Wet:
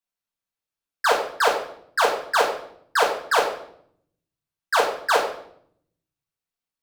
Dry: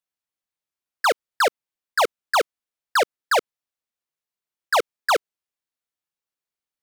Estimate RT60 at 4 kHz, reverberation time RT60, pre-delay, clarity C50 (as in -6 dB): 0.55 s, 0.65 s, 4 ms, 6.0 dB